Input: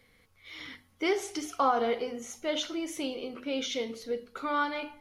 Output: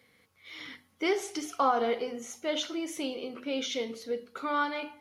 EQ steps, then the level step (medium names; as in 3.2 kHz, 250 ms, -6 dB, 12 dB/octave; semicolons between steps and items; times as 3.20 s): high-pass 120 Hz 12 dB/octave; 0.0 dB